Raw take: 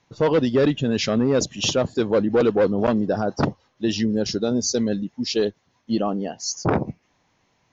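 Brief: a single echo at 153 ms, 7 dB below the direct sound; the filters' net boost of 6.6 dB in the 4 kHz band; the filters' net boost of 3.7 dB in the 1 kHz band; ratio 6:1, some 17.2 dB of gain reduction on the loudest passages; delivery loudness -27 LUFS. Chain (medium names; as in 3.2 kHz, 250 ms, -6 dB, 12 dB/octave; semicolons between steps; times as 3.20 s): peaking EQ 1 kHz +4.5 dB; peaking EQ 4 kHz +8.5 dB; compression 6:1, threshold -33 dBFS; delay 153 ms -7 dB; trim +8 dB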